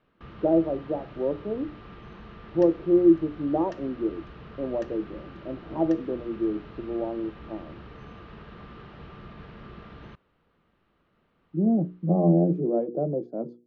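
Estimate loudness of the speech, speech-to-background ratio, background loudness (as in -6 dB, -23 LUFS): -26.0 LUFS, 19.5 dB, -45.5 LUFS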